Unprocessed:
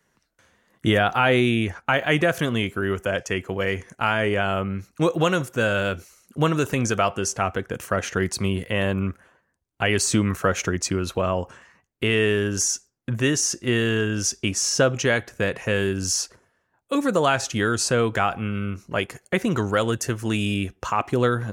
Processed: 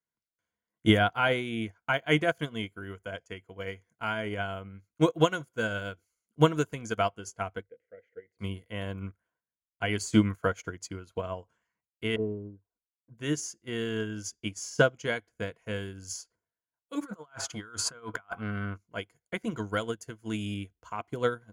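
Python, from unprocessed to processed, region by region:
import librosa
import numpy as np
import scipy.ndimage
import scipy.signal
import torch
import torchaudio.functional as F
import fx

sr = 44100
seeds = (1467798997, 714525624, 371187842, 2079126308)

y = fx.chain(x, sr, fx.double_bandpass(hz=1000.0, octaves=2.0),
    fx.tilt_eq(slope=-3.0), at=(7.63, 8.39))
y = fx.chain(y, sr, fx.lowpass(hz=1000.0, slope=24),
    fx.env_flanger(rest_ms=10.8, full_db=-20.5),
    fx.upward_expand(threshold_db=-35.0, expansion=1.5), at=(12.16, 13.18))
y = fx.chain(y, sr, fx.peak_eq(hz=1200.0, db=12.5, octaves=0.89),
    fx.over_compress(threshold_db=-25.0, ratio=-1.0),
    fx.transformer_sat(knee_hz=610.0), at=(17.01, 18.78))
y = fx.ripple_eq(y, sr, per_octave=1.8, db=8)
y = fx.upward_expand(y, sr, threshold_db=-32.0, expansion=2.5)
y = y * 10.0 ** (-1.5 / 20.0)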